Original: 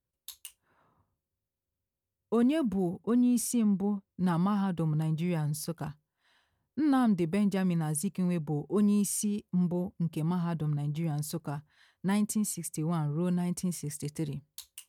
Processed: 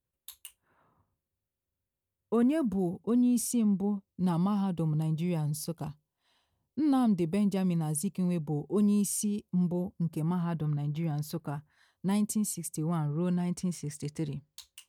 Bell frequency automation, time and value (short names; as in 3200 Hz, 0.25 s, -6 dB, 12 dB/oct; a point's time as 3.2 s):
bell -10.5 dB 0.7 oct
2.37 s 5300 Hz
2.85 s 1600 Hz
9.81 s 1600 Hz
10.69 s 9100 Hz
11.26 s 9100 Hz
12.09 s 1600 Hz
12.71 s 1600 Hz
13.17 s 12000 Hz